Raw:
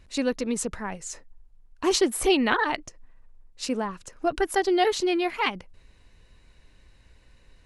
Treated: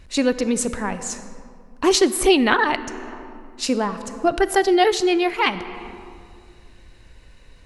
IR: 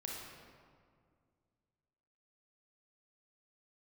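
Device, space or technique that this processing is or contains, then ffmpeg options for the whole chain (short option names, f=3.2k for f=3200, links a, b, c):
compressed reverb return: -filter_complex "[0:a]asplit=2[a][b];[1:a]atrim=start_sample=2205[c];[b][c]afir=irnorm=-1:irlink=0,acompressor=threshold=-29dB:ratio=6,volume=-3.5dB[d];[a][d]amix=inputs=2:normalize=0,volume=4.5dB"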